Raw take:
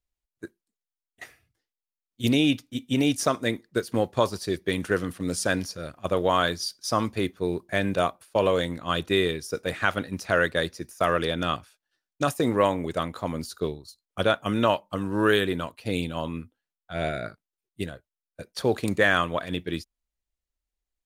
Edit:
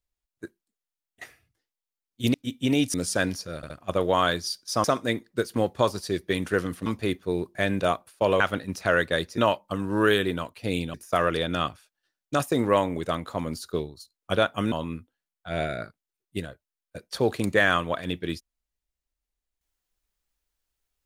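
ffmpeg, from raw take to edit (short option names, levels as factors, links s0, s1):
-filter_complex "[0:a]asplit=11[s0][s1][s2][s3][s4][s5][s6][s7][s8][s9][s10];[s0]atrim=end=2.342[s11];[s1]atrim=start=2.618:end=3.222[s12];[s2]atrim=start=5.238:end=5.932[s13];[s3]atrim=start=5.858:end=5.932[s14];[s4]atrim=start=5.858:end=7.002[s15];[s5]atrim=start=3.218:end=5.242[s16];[s6]atrim=start=6.998:end=8.542[s17];[s7]atrim=start=9.838:end=10.822[s18];[s8]atrim=start=14.598:end=16.162[s19];[s9]atrim=start=10.818:end=14.602[s20];[s10]atrim=start=16.158[s21];[s11][s12]acrossfade=d=0.004:c1=hsin:c2=hsin[s22];[s22][s13]acrossfade=d=0.004:c1=hsin:c2=hsin[s23];[s23][s14]acrossfade=d=0.004:c1=hsin:c2=hsin[s24];[s24][s15]acrossfade=d=0.004:c1=hsin:c2=hsin[s25];[s25][s16]acrossfade=d=0.004:c1=hsin:c2=hsin[s26];[s26][s17]acrossfade=d=0.004:c1=hsin:c2=hsin[s27];[s27][s18]acrossfade=d=0.004:c1=hsin:c2=hsin[s28];[s28][s19]acrossfade=d=0.004:c1=hsin:c2=hsin[s29];[s29][s20]acrossfade=d=0.004:c1=hsin:c2=hsin[s30];[s30][s21]acrossfade=d=0.004:c1=hsin:c2=hsin"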